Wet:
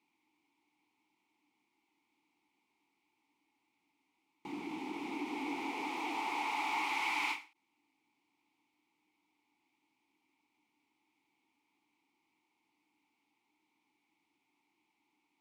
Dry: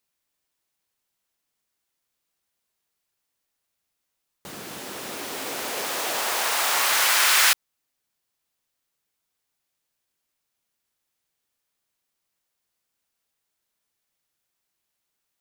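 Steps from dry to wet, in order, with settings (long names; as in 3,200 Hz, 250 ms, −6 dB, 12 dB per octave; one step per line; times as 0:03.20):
power curve on the samples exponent 0.7
formant filter u
every ending faded ahead of time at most 180 dB per second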